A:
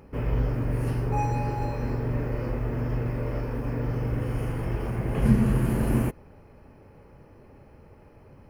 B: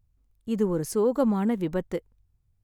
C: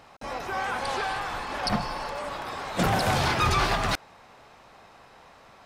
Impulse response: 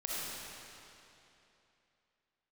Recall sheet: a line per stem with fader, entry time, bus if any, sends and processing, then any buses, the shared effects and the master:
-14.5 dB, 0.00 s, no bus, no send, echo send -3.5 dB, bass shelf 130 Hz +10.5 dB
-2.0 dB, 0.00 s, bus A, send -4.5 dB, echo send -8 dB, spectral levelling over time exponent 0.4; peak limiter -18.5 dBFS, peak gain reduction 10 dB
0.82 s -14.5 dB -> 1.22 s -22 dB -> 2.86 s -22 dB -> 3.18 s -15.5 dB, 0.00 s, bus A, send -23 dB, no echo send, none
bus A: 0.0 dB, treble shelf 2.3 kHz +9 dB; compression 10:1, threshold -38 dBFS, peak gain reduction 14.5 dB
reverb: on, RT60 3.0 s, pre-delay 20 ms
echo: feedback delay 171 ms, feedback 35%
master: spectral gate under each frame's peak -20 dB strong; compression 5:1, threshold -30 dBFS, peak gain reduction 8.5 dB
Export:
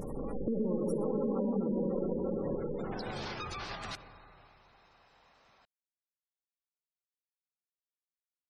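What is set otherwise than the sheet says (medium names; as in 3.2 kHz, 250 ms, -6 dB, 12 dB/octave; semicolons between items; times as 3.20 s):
stem A: muted; reverb return +7.5 dB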